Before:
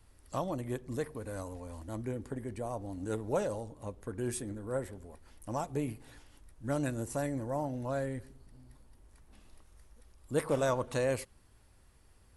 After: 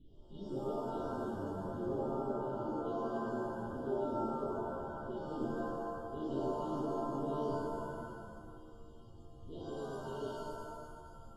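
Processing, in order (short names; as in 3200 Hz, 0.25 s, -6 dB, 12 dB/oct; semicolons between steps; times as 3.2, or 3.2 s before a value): Wiener smoothing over 15 samples; notches 50/100/150 Hz; expander -52 dBFS; low shelf 90 Hz -8.5 dB; reverse; compressor 6:1, threshold -43 dBFS, peak gain reduction 16.5 dB; reverse; added noise brown -58 dBFS; brick-wall FIR band-stop 430–2600 Hz; speed mistake 44.1 kHz file played as 48 kHz; LPC vocoder at 8 kHz pitch kept; shimmer reverb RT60 1.5 s, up +7 st, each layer -2 dB, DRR -7 dB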